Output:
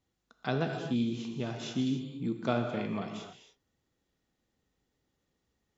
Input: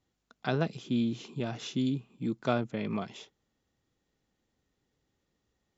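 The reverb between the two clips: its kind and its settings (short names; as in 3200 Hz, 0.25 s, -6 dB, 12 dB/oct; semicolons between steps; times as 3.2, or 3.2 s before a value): non-linear reverb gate 0.31 s flat, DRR 4 dB; gain -2 dB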